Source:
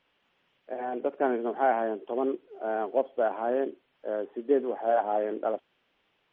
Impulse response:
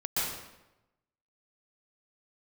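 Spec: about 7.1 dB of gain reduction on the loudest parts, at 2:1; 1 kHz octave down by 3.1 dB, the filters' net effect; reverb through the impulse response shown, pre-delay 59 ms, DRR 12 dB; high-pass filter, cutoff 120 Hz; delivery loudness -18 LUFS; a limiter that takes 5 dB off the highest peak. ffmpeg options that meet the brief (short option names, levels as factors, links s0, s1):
-filter_complex "[0:a]highpass=120,equalizer=f=1000:t=o:g=-5,acompressor=threshold=0.0251:ratio=2,alimiter=level_in=1.12:limit=0.0631:level=0:latency=1,volume=0.891,asplit=2[s0][s1];[1:a]atrim=start_sample=2205,adelay=59[s2];[s1][s2]afir=irnorm=-1:irlink=0,volume=0.1[s3];[s0][s3]amix=inputs=2:normalize=0,volume=8.41"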